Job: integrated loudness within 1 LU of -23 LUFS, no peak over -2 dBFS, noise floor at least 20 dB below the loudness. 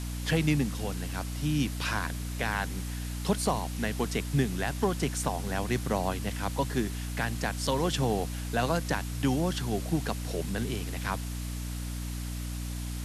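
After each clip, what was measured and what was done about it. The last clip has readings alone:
hum 60 Hz; harmonics up to 300 Hz; hum level -33 dBFS; noise floor -35 dBFS; noise floor target -51 dBFS; loudness -31.0 LUFS; peak -14.0 dBFS; loudness target -23.0 LUFS
-> de-hum 60 Hz, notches 5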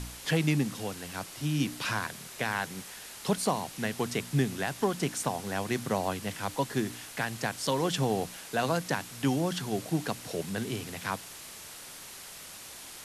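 hum none; noise floor -46 dBFS; noise floor target -52 dBFS
-> denoiser 6 dB, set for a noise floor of -46 dBFS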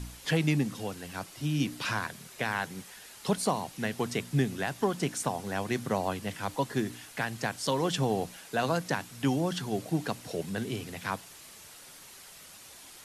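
noise floor -50 dBFS; noise floor target -52 dBFS
-> denoiser 6 dB, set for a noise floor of -50 dBFS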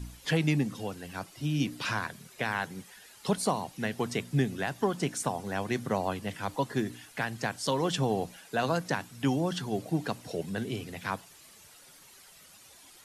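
noise floor -55 dBFS; loudness -32.0 LUFS; peak -15.0 dBFS; loudness target -23.0 LUFS
-> gain +9 dB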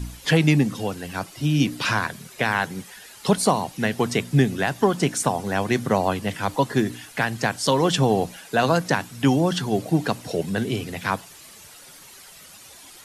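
loudness -23.0 LUFS; peak -6.0 dBFS; noise floor -46 dBFS

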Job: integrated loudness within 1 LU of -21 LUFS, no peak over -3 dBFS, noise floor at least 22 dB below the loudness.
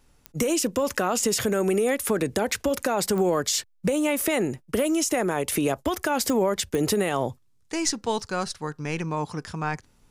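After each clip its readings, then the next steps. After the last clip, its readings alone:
clicks 4; loudness -25.5 LUFS; peak -12.0 dBFS; loudness target -21.0 LUFS
-> de-click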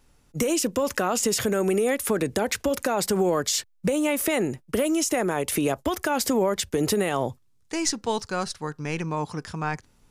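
clicks 0; loudness -25.5 LUFS; peak -12.0 dBFS; loudness target -21.0 LUFS
-> gain +4.5 dB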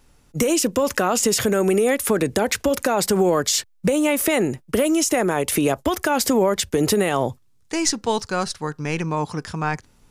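loudness -21.0 LUFS; peak -7.5 dBFS; noise floor -57 dBFS

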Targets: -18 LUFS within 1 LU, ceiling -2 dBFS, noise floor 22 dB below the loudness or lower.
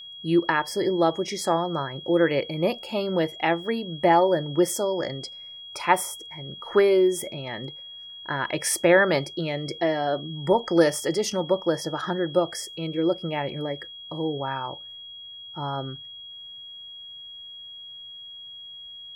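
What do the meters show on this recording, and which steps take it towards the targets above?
steady tone 3300 Hz; tone level -39 dBFS; loudness -24.5 LUFS; peak -4.0 dBFS; loudness target -18.0 LUFS
-> notch 3300 Hz, Q 30; gain +6.5 dB; limiter -2 dBFS

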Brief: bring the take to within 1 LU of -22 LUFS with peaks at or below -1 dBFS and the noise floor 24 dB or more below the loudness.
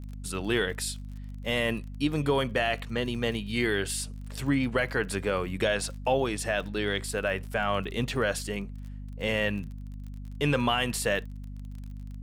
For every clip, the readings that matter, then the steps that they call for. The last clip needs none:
ticks 34/s; hum 50 Hz; harmonics up to 250 Hz; hum level -37 dBFS; loudness -29.0 LUFS; peak -14.0 dBFS; loudness target -22.0 LUFS
-> de-click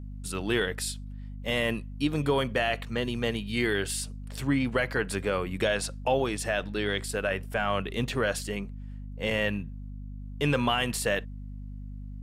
ticks 0.082/s; hum 50 Hz; harmonics up to 250 Hz; hum level -37 dBFS
-> notches 50/100/150/200/250 Hz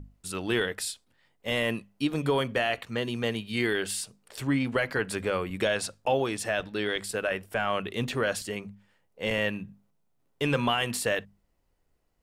hum none; loudness -29.5 LUFS; peak -14.0 dBFS; loudness target -22.0 LUFS
-> gain +7.5 dB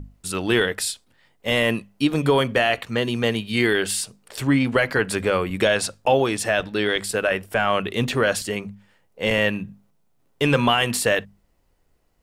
loudness -22.0 LUFS; peak -6.5 dBFS; noise floor -64 dBFS

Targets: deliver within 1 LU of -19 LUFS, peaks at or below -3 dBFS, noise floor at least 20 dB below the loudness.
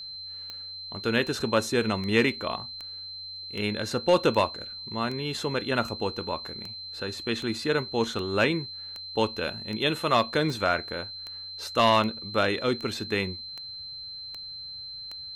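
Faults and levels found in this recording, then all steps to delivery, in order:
clicks 20; steady tone 4100 Hz; tone level -37 dBFS; loudness -28.0 LUFS; peak -10.0 dBFS; loudness target -19.0 LUFS
-> de-click; notch 4100 Hz, Q 30; gain +9 dB; limiter -3 dBFS

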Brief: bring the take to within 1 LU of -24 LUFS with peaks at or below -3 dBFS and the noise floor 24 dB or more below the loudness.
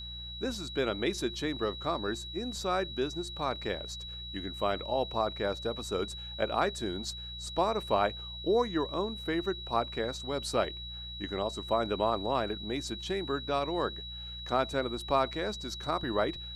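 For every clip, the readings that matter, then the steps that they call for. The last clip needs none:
hum 60 Hz; harmonics up to 180 Hz; hum level -44 dBFS; steady tone 3900 Hz; tone level -41 dBFS; loudness -32.5 LUFS; peak -13.0 dBFS; loudness target -24.0 LUFS
-> de-hum 60 Hz, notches 3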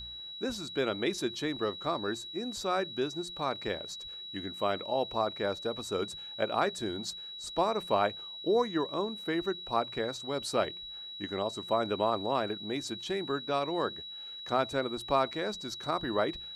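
hum none; steady tone 3900 Hz; tone level -41 dBFS
-> notch 3900 Hz, Q 30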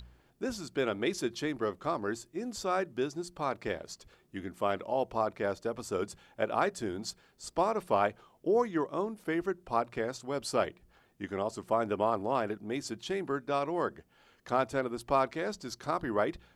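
steady tone none; loudness -33.5 LUFS; peak -13.5 dBFS; loudness target -24.0 LUFS
-> gain +9.5 dB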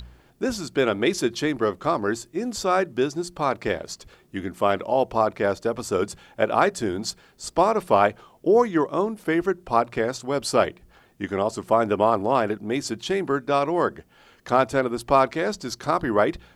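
loudness -24.0 LUFS; peak -4.0 dBFS; noise floor -57 dBFS

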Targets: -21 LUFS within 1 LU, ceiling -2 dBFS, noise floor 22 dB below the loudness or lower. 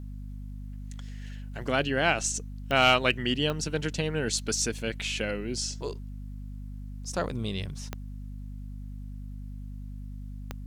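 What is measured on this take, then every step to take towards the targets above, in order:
clicks 4; hum 50 Hz; harmonics up to 250 Hz; hum level -36 dBFS; loudness -28.0 LUFS; peak -10.0 dBFS; loudness target -21.0 LUFS
-> de-click; notches 50/100/150/200/250 Hz; gain +7 dB

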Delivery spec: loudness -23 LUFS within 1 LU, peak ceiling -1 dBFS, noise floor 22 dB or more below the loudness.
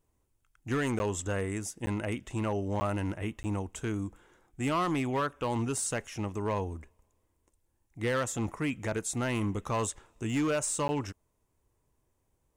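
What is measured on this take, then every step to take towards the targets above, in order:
clipped 1.3%; flat tops at -24.0 dBFS; dropouts 5; longest dropout 10 ms; loudness -32.5 LUFS; peak -24.0 dBFS; loudness target -23.0 LUFS
-> clip repair -24 dBFS; interpolate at 0.99/1.86/2.8/3.43/10.88, 10 ms; gain +9.5 dB

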